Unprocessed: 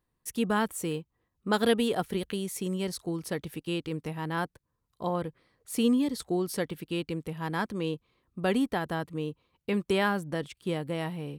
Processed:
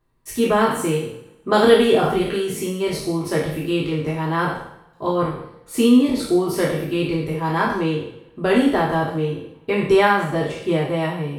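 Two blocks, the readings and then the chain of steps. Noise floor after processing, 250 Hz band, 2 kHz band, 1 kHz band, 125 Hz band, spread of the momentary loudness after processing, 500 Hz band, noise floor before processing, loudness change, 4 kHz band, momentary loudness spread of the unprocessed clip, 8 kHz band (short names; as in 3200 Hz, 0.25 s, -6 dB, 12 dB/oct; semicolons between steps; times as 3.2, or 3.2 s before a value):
-51 dBFS, +10.0 dB, +10.0 dB, +12.0 dB, +10.0 dB, 11 LU, +12.5 dB, -80 dBFS, +11.0 dB, +8.5 dB, 10 LU, +6.5 dB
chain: spectral trails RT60 0.68 s; high shelf 4200 Hz -8.5 dB; two-slope reverb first 0.3 s, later 1.5 s, from -25 dB, DRR -3.5 dB; gain +5 dB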